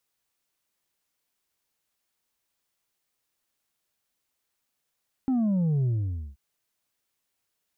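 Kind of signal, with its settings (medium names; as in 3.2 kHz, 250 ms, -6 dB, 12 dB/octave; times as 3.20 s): sub drop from 270 Hz, over 1.08 s, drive 3.5 dB, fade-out 0.51 s, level -22 dB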